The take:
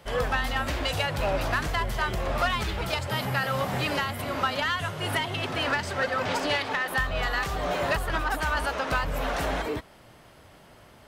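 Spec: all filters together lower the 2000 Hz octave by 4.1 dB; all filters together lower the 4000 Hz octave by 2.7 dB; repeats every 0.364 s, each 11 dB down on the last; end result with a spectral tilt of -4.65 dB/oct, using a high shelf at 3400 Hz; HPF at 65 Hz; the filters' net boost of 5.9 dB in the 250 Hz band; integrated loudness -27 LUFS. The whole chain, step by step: HPF 65 Hz; bell 250 Hz +7.5 dB; bell 2000 Hz -6 dB; high shelf 3400 Hz +6.5 dB; bell 4000 Hz -5.5 dB; feedback echo 0.364 s, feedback 28%, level -11 dB; gain +1 dB

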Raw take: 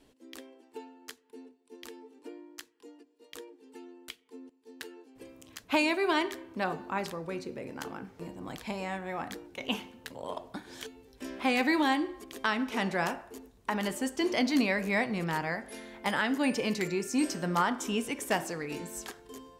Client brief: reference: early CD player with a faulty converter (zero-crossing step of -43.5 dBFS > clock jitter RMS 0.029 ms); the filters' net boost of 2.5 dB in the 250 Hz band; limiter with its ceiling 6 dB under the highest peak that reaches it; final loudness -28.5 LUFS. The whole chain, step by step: bell 250 Hz +3 dB; limiter -19.5 dBFS; zero-crossing step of -43.5 dBFS; clock jitter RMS 0.029 ms; gain +3.5 dB

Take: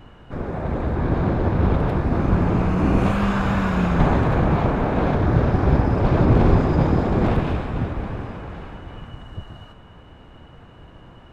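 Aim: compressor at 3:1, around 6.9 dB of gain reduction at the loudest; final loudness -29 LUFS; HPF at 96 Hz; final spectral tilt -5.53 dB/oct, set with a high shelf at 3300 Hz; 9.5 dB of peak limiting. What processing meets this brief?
HPF 96 Hz; high shelf 3300 Hz +4.5 dB; compressor 3:1, threshold -23 dBFS; gain +1.5 dB; limiter -19.5 dBFS

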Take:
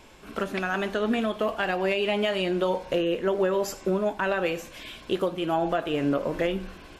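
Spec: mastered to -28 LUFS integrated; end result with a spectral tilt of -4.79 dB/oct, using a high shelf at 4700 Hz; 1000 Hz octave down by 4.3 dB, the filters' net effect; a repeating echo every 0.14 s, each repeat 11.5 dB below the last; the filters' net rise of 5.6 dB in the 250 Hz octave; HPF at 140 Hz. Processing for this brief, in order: HPF 140 Hz; bell 250 Hz +9 dB; bell 1000 Hz -7 dB; high shelf 4700 Hz +3 dB; feedback echo 0.14 s, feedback 27%, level -11.5 dB; gain -3.5 dB

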